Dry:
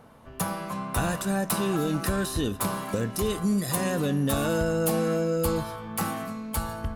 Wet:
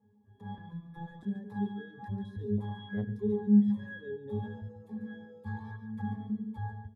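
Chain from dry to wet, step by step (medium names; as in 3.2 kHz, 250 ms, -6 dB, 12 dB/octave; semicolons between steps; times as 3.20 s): high-pass 120 Hz 12 dB/octave; bass shelf 250 Hz +10 dB; peak limiter -20 dBFS, peak gain reduction 9.5 dB; level rider gain up to 11.5 dB; pitch-class resonator G#, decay 0.77 s; 0.58–1.23 s: robot voice 168 Hz; reverb removal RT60 1.3 s; 5.46–5.77 s: time-frequency box 850–11000 Hz +9 dB; delay 141 ms -9 dB; 2.58–3.10 s: transformer saturation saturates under 230 Hz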